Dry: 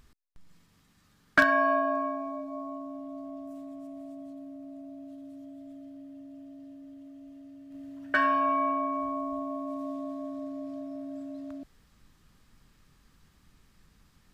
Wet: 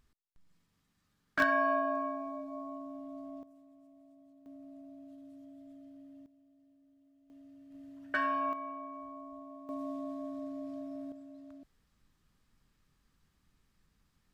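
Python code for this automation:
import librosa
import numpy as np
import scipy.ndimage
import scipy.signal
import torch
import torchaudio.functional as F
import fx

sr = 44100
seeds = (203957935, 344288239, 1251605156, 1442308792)

y = fx.gain(x, sr, db=fx.steps((0.0, -12.0), (1.4, -4.5), (3.43, -17.0), (4.46, -7.0), (6.26, -19.0), (7.3, -7.0), (8.53, -14.0), (9.69, -3.5), (11.12, -11.0)))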